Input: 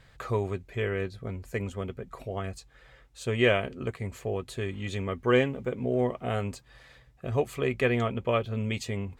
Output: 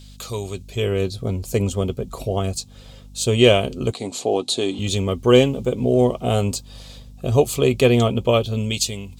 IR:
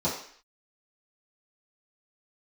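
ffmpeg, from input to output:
-filter_complex "[0:a]highshelf=f=2200:g=-8.5,acrossover=split=1200[s0][s1];[s0]dynaudnorm=f=230:g=7:m=5.01[s2];[s2][s1]amix=inputs=2:normalize=0,aeval=exprs='val(0)+0.01*(sin(2*PI*50*n/s)+sin(2*PI*2*50*n/s)/2+sin(2*PI*3*50*n/s)/3+sin(2*PI*4*50*n/s)/4+sin(2*PI*5*50*n/s)/5)':c=same,asettb=1/sr,asplit=3[s3][s4][s5];[s3]atrim=end=3.924[s6];[s4]atrim=start=3.92:end=4.79,asetpts=PTS-STARTPTS,afade=t=in:d=0.004:c=qsin,afade=t=out:st=0.866:d=0.004:c=qsin,highpass=250,equalizer=f=290:t=q:w=4:g=8,equalizer=f=770:t=q:w=4:g=9,equalizer=f=3900:t=q:w=4:g=8,lowpass=f=9900:w=0.5412,lowpass=f=9900:w=1.3066[s7];[s5]atrim=start=4.786[s8];[s6][s7]acrossfade=d=0.004:c1=hsin:c2=qsin[s9];[s9][s8]acrossfade=d=0.004:c1=qsin:c2=hsin,aexciter=amount=14.8:drive=7.6:freq=2900,volume=0.841"

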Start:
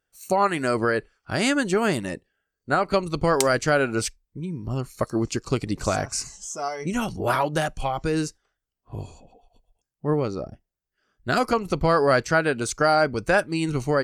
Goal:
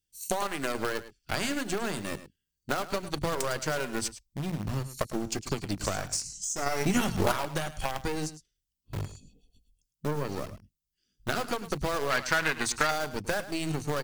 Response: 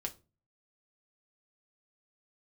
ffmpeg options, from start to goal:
-filter_complex "[0:a]acrossover=split=300|2900[s0][s1][s2];[s0]flanger=delay=19:depth=2.5:speed=2.4[s3];[s1]acrusher=bits=4:dc=4:mix=0:aa=0.000001[s4];[s3][s4][s2]amix=inputs=3:normalize=0,asoftclip=type=hard:threshold=0.133,acompressor=threshold=0.0224:ratio=6,aecho=1:1:106:0.237,aeval=exprs='0.119*(cos(1*acos(clip(val(0)/0.119,-1,1)))-cos(1*PI/2))+0.00335*(cos(2*acos(clip(val(0)/0.119,-1,1)))-cos(2*PI/2))+0.00596*(cos(7*acos(clip(val(0)/0.119,-1,1)))-cos(7*PI/2))':c=same,asettb=1/sr,asplit=3[s5][s6][s7];[s5]atrim=end=6.664[s8];[s6]atrim=start=6.66:end=7.32,asetpts=PTS-STARTPTS,afade=t=in:d=0.004:c=qsin,afade=t=out:st=0.656:d=0.004:c=qsin,acontrast=37[s9];[s7]atrim=start=7.316[s10];[s8][s9]acrossfade=d=0.004:c1=hsin:c2=qsin[s11];[s11][s10]acrossfade=d=0.004:c1=qsin:c2=hsin,asettb=1/sr,asplit=3[s12][s13][s14];[s12]atrim=end=12.104[s15];[s13]atrim=start=12.1:end=12.91,asetpts=PTS-STARTPTS,afade=t=in:d=0.004:c=qsin,afade=t=out:st=0.806:d=0.004:c=qsin,equalizer=f=500:t=o:w=1:g=-3,equalizer=f=1000:t=o:w=1:g=4,equalizer=f=2000:t=o:w=1:g=9,equalizer=f=4000:t=o:w=1:g=4[s16];[s14]atrim=start=12.906[s17];[s15][s16]acrossfade=d=0.004:c1=hsin:c2=qsin[s18];[s18][s17]acrossfade=d=0.004:c1=qsin:c2=hsin,volume=2.11"

